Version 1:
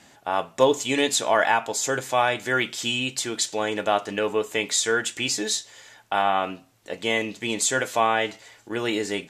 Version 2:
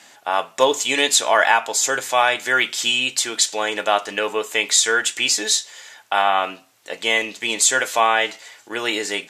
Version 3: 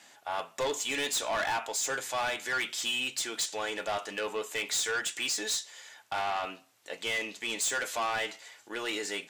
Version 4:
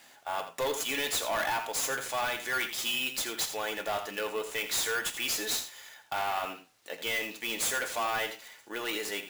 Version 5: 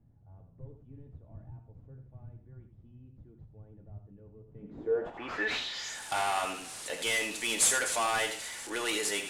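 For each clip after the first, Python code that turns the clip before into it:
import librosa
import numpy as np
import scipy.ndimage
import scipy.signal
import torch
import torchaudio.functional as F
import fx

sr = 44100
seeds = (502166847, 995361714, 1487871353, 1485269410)

y1 = fx.highpass(x, sr, hz=910.0, slope=6)
y1 = y1 * librosa.db_to_amplitude(7.5)
y2 = 10.0 ** (-17.5 / 20.0) * np.tanh(y1 / 10.0 ** (-17.5 / 20.0))
y2 = y2 * librosa.db_to_amplitude(-8.5)
y3 = fx.sample_hold(y2, sr, seeds[0], rate_hz=18000.0, jitter_pct=0)
y3 = y3 + 10.0 ** (-10.5 / 20.0) * np.pad(y3, (int(83 * sr / 1000.0), 0))[:len(y3)]
y4 = y3 + 0.5 * 10.0 ** (-40.5 / 20.0) * np.sign(y3)
y4 = fx.filter_sweep_lowpass(y4, sr, from_hz=110.0, to_hz=9200.0, start_s=4.45, end_s=6.01, q=2.9)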